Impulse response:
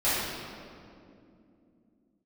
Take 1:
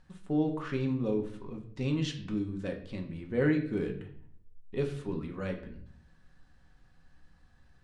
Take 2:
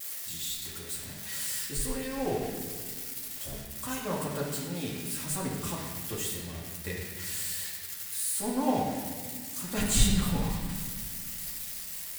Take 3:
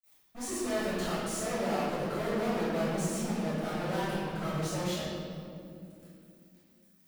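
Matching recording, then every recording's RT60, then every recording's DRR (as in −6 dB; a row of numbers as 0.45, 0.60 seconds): 3; 0.55, 1.7, 2.6 seconds; 2.0, −5.5, −14.0 decibels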